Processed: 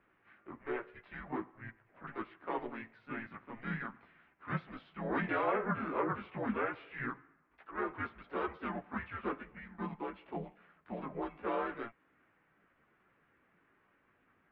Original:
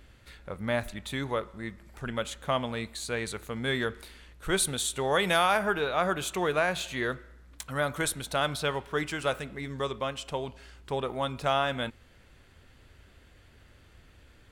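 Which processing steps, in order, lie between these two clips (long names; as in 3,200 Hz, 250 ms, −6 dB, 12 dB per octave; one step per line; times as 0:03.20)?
multi-voice chorus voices 4, 0.22 Hz, delay 14 ms, depth 4.4 ms
single-sideband voice off tune −230 Hz 380–2,300 Hz
pitch-shifted copies added +3 semitones −4 dB, +7 semitones −17 dB
level −5.5 dB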